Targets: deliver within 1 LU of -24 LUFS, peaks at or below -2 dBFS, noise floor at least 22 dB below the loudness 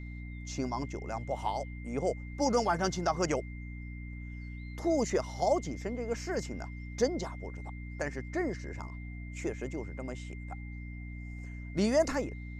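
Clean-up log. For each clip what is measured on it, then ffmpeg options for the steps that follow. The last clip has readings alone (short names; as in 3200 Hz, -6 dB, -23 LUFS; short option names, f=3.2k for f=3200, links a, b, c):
hum 60 Hz; harmonics up to 300 Hz; hum level -39 dBFS; steady tone 2100 Hz; tone level -51 dBFS; loudness -34.5 LUFS; peak -15.0 dBFS; loudness target -24.0 LUFS
-> -af "bandreject=f=60:t=h:w=6,bandreject=f=120:t=h:w=6,bandreject=f=180:t=h:w=6,bandreject=f=240:t=h:w=6,bandreject=f=300:t=h:w=6"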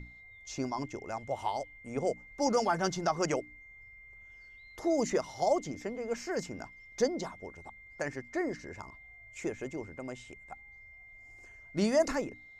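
hum none; steady tone 2100 Hz; tone level -51 dBFS
-> -af "bandreject=f=2.1k:w=30"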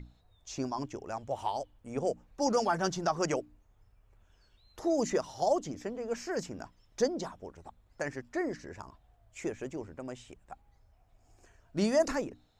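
steady tone none; loudness -34.0 LUFS; peak -16.0 dBFS; loudness target -24.0 LUFS
-> -af "volume=10dB"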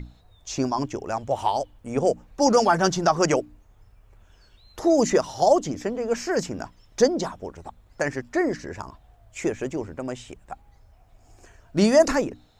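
loudness -24.0 LUFS; peak -6.0 dBFS; noise floor -57 dBFS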